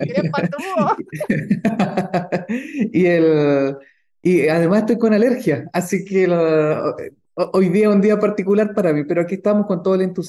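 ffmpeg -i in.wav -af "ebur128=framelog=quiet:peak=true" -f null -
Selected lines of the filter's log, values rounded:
Integrated loudness:
  I:         -17.6 LUFS
  Threshold: -27.8 LUFS
Loudness range:
  LRA:         2.0 LU
  Threshold: -37.5 LUFS
  LRA low:   -18.7 LUFS
  LRA high:  -16.7 LUFS
True peak:
  Peak:       -6.1 dBFS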